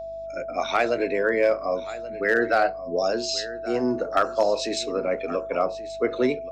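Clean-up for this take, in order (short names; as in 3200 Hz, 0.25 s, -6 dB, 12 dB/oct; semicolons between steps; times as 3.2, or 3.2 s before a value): clip repair -11.5 dBFS; de-hum 50.1 Hz, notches 7; notch 660 Hz, Q 30; inverse comb 1.13 s -16 dB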